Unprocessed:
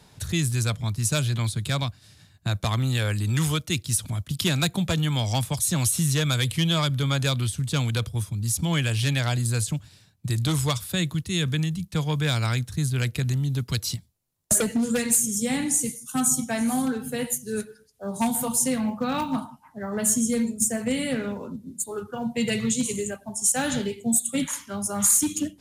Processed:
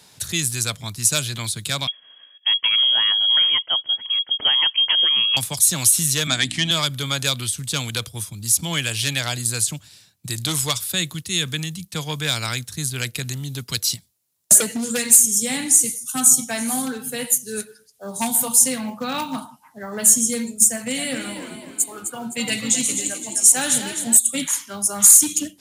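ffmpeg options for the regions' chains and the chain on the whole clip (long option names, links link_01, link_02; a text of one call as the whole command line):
ffmpeg -i in.wav -filter_complex "[0:a]asettb=1/sr,asplit=3[link_01][link_02][link_03];[link_01]atrim=end=1.874[link_04];[link_02]atrim=start=1.87:end=5.37,asetpts=PTS-STARTPTS,afade=type=in:duration=0.004:curve=qsin,afade=type=out:start_time=3.496:duration=0.004:curve=qsin,equalizer=frequency=890:width=5.8:gain=-4.5,lowpass=frequency=2900:width_type=q:width=0.5098,lowpass=frequency=2900:width_type=q:width=0.6013,lowpass=frequency=2900:width_type=q:width=0.9,lowpass=frequency=2900:width_type=q:width=2.563,afreqshift=-3400[link_05];[link_03]atrim=start=5.366[link_06];[link_04][link_05]acrossfade=duration=0.004:curve1=hsin:curve2=qsin[link_07];[link_07][link_06]acrossfade=duration=0.004:curve1=qsin:curve2=hsin,asettb=1/sr,asplit=3[link_08][link_09][link_10];[link_08]atrim=end=6.274[link_11];[link_09]atrim=start=6.27:end=6.71,asetpts=PTS-STARTPTS,afade=type=in:duration=0.004:curve=qsin,afade=type=out:start_time=0.436:duration=0.004:curve=qsin,aeval=exprs='val(0)+0.0224*(sin(2*PI*60*n/s)+sin(2*PI*2*60*n/s)/2+sin(2*PI*3*60*n/s)/3+sin(2*PI*4*60*n/s)/4+sin(2*PI*5*60*n/s)/5)':channel_layout=same,highpass=110,equalizer=frequency=260:width_type=q:width=4:gain=9,equalizer=frequency=480:width_type=q:width=4:gain=-8,equalizer=frequency=700:width_type=q:width=4:gain=10,equalizer=frequency=1800:width_type=q:width=4:gain=8,lowpass=frequency=8300:width=0.5412,lowpass=frequency=8300:width=1.3066[link_12];[link_10]atrim=start=6.706[link_13];[link_11][link_12]acrossfade=duration=0.004:curve1=hsin:curve2=qsin[link_14];[link_14][link_13]acrossfade=duration=0.004:curve1=qsin:curve2=hsin,asettb=1/sr,asplit=3[link_15][link_16][link_17];[link_15]atrim=end=20.694[link_18];[link_16]atrim=start=20.69:end=24.17,asetpts=PTS-STARTPTS,afade=type=in:duration=0.004:curve=qsin,afade=type=out:start_time=3.476:duration=0.004:curve=qsin,equalizer=frequency=410:width_type=o:width=0.27:gain=-10,asplit=6[link_19][link_20][link_21][link_22][link_23][link_24];[link_20]adelay=258,afreqshift=44,volume=-8.5dB[link_25];[link_21]adelay=516,afreqshift=88,volume=-16dB[link_26];[link_22]adelay=774,afreqshift=132,volume=-23.6dB[link_27];[link_23]adelay=1032,afreqshift=176,volume=-31.1dB[link_28];[link_24]adelay=1290,afreqshift=220,volume=-38.6dB[link_29];[link_19][link_25][link_26][link_27][link_28][link_29]amix=inputs=6:normalize=0,atrim=end_sample=153468[link_30];[link_17]atrim=start=24.166[link_31];[link_18][link_30]acrossfade=duration=0.004:curve1=hsin:curve2=qsin[link_32];[link_32][link_31]acrossfade=duration=0.004:curve1=qsin:curve2=hsin,highpass=frequency=210:poles=1,highshelf=frequency=2400:gain=10" out.wav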